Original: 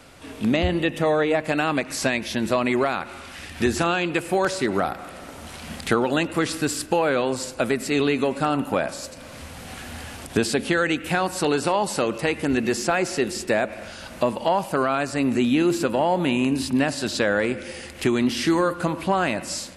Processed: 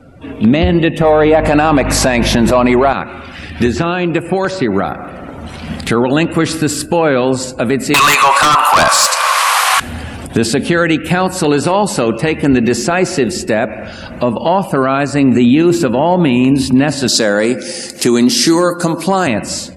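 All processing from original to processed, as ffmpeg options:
-filter_complex "[0:a]asettb=1/sr,asplit=3[s0][s1][s2];[s0]atrim=end=1.014[s3];[s1]atrim=start=1.01:end=2.93,asetpts=PTS-STARTPTS,afade=t=in:d=0.004:c=qsin,afade=t=out:st=1.916:d=0.004:c=qsin,equalizer=f=830:t=o:w=1.5:g=9,acontrast=48,aeval=exprs='val(0)+0.0355*(sin(2*PI*50*n/s)+sin(2*PI*2*50*n/s)/2+sin(2*PI*3*50*n/s)/3+sin(2*PI*4*50*n/s)/4+sin(2*PI*5*50*n/s)/5)':c=same[s4];[s2]atrim=start=2.926[s5];[s3][s4]acrossfade=d=0.004:c1=hsin:c2=qsin[s6];[s6][s5]acrossfade=d=0.004:c1=qsin:c2=hsin,asettb=1/sr,asplit=3[s7][s8][s9];[s7]atrim=end=3.664[s10];[s8]atrim=start=3.66:end=5.26,asetpts=PTS-STARTPTS,afade=t=in:d=0.004:c=qsin,afade=t=out:st=1.596:d=0.004:c=qsin,acrusher=bits=8:mix=0:aa=0.5,acrossover=split=1800|5200[s11][s12][s13];[s11]acompressor=threshold=0.0794:ratio=4[s14];[s12]acompressor=threshold=0.0178:ratio=4[s15];[s13]acompressor=threshold=0.00501:ratio=4[s16];[s14][s15][s16]amix=inputs=3:normalize=0[s17];[s9]atrim=start=5.256[s18];[s10][s17]acrossfade=d=0.004:c1=hsin:c2=qsin[s19];[s19][s18]acrossfade=d=0.004:c1=qsin:c2=hsin,asettb=1/sr,asplit=3[s20][s21][s22];[s20]atrim=end=7.944[s23];[s21]atrim=start=7.94:end=9.8,asetpts=PTS-STARTPTS,afade=t=in:d=0.004:c=qsin,afade=t=out:st=1.856:d=0.004:c=qsin,highpass=f=820:w=0.5412,highpass=f=820:w=1.3066,aeval=exprs='0.266*sin(PI/2*6.31*val(0)/0.266)':c=same,equalizer=f=1100:w=3.3:g=12.5[s24];[s22]atrim=start=9.796[s25];[s23][s24]acrossfade=d=0.004:c1=hsin:c2=qsin[s26];[s26][s25]acrossfade=d=0.004:c1=qsin:c2=hsin,asettb=1/sr,asplit=3[s27][s28][s29];[s27]atrim=end=17.084[s30];[s28]atrim=start=17.08:end=19.27,asetpts=PTS-STARTPTS,afade=t=in:d=0.004:c=qsin,afade=t=out:st=2.186:d=0.004:c=qsin,highpass=190,highshelf=f=3800:t=q:w=1.5:g=8.5,asoftclip=type=hard:threshold=0.266[s31];[s29]atrim=start=19.266[s32];[s30][s31]acrossfade=d=0.004:c1=hsin:c2=qsin[s33];[s33][s32]acrossfade=d=0.004:c1=qsin:c2=hsin,afftdn=nr=20:nf=-45,equalizer=f=140:w=0.48:g=6,alimiter=level_in=3.16:limit=0.891:release=50:level=0:latency=1,volume=0.891"

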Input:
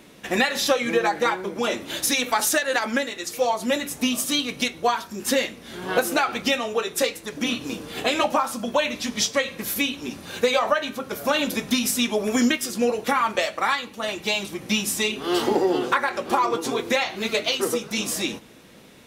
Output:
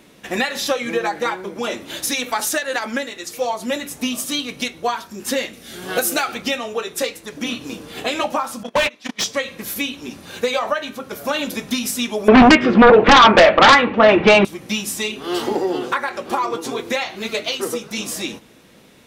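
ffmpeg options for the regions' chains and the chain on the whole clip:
-filter_complex "[0:a]asettb=1/sr,asplit=3[s0][s1][s2];[s0]atrim=end=5.534[s3];[s1]atrim=start=5.53:end=6.35,asetpts=PTS-STARTPTS,afade=t=in:d=0.004:c=qsin,afade=t=out:st=0.816:d=0.004:c=qsin,highshelf=f=4600:g=11,bandreject=f=980:w=5[s4];[s2]atrim=start=6.346[s5];[s3][s4]acrossfade=d=0.004:c1=hsin:c2=qsin[s6];[s6][s5]acrossfade=d=0.004:c1=qsin:c2=hsin,asettb=1/sr,asplit=3[s7][s8][s9];[s7]atrim=end=8.634[s10];[s8]atrim=start=8.63:end=9.24,asetpts=PTS-STARTPTS,afade=t=in:d=0.004:c=qsin,afade=t=out:st=0.606:d=0.004:c=qsin,agate=range=0.0251:threshold=0.0562:ratio=16:release=100:detection=peak,asplit=2[s11][s12];[s12]highpass=f=720:p=1,volume=22.4,asoftclip=type=tanh:threshold=0.335[s13];[s11][s13]amix=inputs=2:normalize=0,lowpass=f=3000:p=1,volume=0.501[s14];[s9]atrim=start=9.236[s15];[s10][s14]acrossfade=d=0.004:c1=hsin:c2=qsin[s16];[s16][s15]acrossfade=d=0.004:c1=qsin:c2=hsin,asettb=1/sr,asplit=3[s17][s18][s19];[s17]atrim=end=12.284[s20];[s18]atrim=start=12.28:end=14.45,asetpts=PTS-STARTPTS,afade=t=in:d=0.004:c=qsin,afade=t=out:st=2.166:d=0.004:c=qsin,lowpass=f=2500:w=0.5412,lowpass=f=2500:w=1.3066,equalizer=f=470:w=0.32:g=4.5,aeval=exprs='0.596*sin(PI/2*3.98*val(0)/0.596)':c=same[s21];[s19]atrim=start=14.446[s22];[s20][s21]acrossfade=d=0.004:c1=hsin:c2=qsin[s23];[s23][s22]acrossfade=d=0.004:c1=qsin:c2=hsin"

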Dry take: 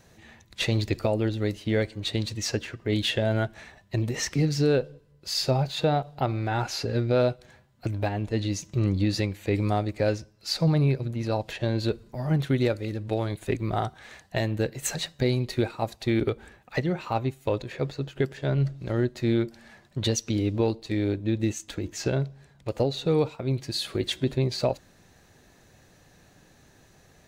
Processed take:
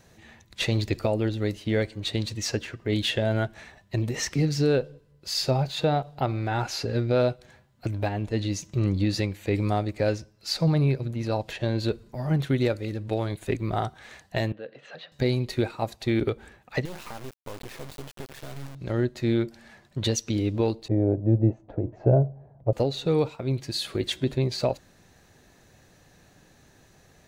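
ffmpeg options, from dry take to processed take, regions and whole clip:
-filter_complex "[0:a]asettb=1/sr,asplit=3[s0][s1][s2];[s0]atrim=end=14.524[s3];[s1]atrim=start=14.52:end=15.12,asetpts=PTS-STARTPTS,afade=t=in:d=0.004:c=qsin,afade=t=out:st=0.596:d=0.004:c=qsin,acompressor=threshold=0.0158:ratio=2:attack=3.2:release=140:knee=1:detection=peak,highpass=330,equalizer=f=360:t=q:w=4:g=-9,equalizer=f=520:t=q:w=4:g=4,equalizer=f=910:t=q:w=4:g=-8,equalizer=f=2200:t=q:w=4:g=-8,lowpass=f=3200:w=0.5412,lowpass=f=3200:w=1.3066[s4];[s2]atrim=start=15.116[s5];[s3][s4]acrossfade=d=0.004:c1=hsin:c2=qsin[s6];[s6][s5]acrossfade=d=0.004:c1=qsin:c2=hsin,asettb=1/sr,asplit=3[s7][s8][s9];[s7]atrim=end=16.854[s10];[s8]atrim=start=16.85:end=18.75,asetpts=PTS-STARTPTS,afade=t=in:d=0.004:c=qsin,afade=t=out:st=1.896:d=0.004:c=qsin,equalizer=f=8100:t=o:w=0.38:g=-6,acompressor=threshold=0.0355:ratio=20:attack=3.2:release=140:knee=1:detection=peak,acrusher=bits=4:dc=4:mix=0:aa=0.000001[s11];[s9]atrim=start=18.746[s12];[s10][s11]acrossfade=d=0.004:c1=hsin:c2=qsin[s13];[s13][s12]acrossfade=d=0.004:c1=qsin:c2=hsin,asettb=1/sr,asplit=3[s14][s15][s16];[s14]atrim=end=20.884[s17];[s15]atrim=start=20.88:end=22.73,asetpts=PTS-STARTPTS,afade=t=in:d=0.004:c=qsin,afade=t=out:st=1.846:d=0.004:c=qsin,lowpass=f=670:t=q:w=3.5,equalizer=f=120:t=o:w=0.27:g=14[s18];[s16]atrim=start=22.726[s19];[s17][s18]acrossfade=d=0.004:c1=hsin:c2=qsin[s20];[s20][s19]acrossfade=d=0.004:c1=qsin:c2=hsin"

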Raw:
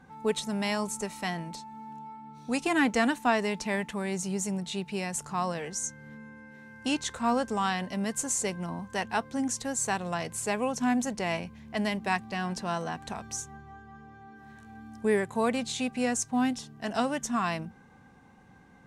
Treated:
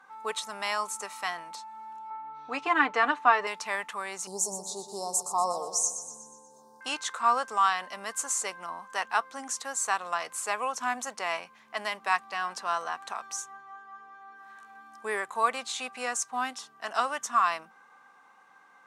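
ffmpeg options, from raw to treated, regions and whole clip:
-filter_complex "[0:a]asettb=1/sr,asplit=3[s0][s1][s2];[s0]atrim=end=2.104[s3];[s1]atrim=start=2.1:end=3.47,asetpts=PTS-STARTPTS,afade=t=in:d=0.004:c=qsin,afade=t=out:st=1.366:d=0.004:c=qsin,lowpass=3100,lowshelf=f=400:g=6.5,aecho=1:1:6.8:0.56,atrim=end_sample=60417[s4];[s2]atrim=start=3.466[s5];[s3][s4]acrossfade=d=0.004:c1=hsin:c2=qsin[s6];[s6][s5]acrossfade=d=0.004:c1=qsin:c2=hsin,asettb=1/sr,asplit=3[s7][s8][s9];[s7]atrim=end=4.274[s10];[s8]atrim=start=4.27:end=6.81,asetpts=PTS-STARTPTS,afade=t=in:d=0.004:c=qsin,afade=t=out:st=2.536:d=0.004:c=qsin,aecho=1:1:121|242|363|484|605|726:0.316|0.168|0.0888|0.0471|0.025|0.0132,atrim=end_sample=112014,acontrast=58,asuperstop=centerf=2100:order=8:qfactor=0.55[s11];[s9]atrim=start=6.806[s12];[s10][s11]acrossfade=d=0.004:c1=hsin:c2=qsin[s13];[s13][s12]acrossfade=d=0.004:c1=qsin:c2=hsin,highpass=690,equalizer=f=1200:t=o:w=0.51:g=11"

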